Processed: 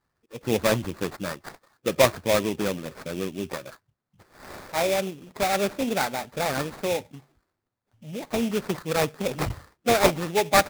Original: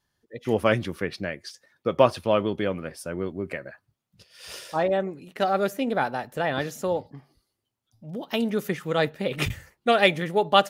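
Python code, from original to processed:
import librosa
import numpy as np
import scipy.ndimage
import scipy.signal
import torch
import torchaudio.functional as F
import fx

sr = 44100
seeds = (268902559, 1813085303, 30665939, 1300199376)

y = fx.spec_quant(x, sr, step_db=15)
y = fx.sample_hold(y, sr, seeds[0], rate_hz=3000.0, jitter_pct=20)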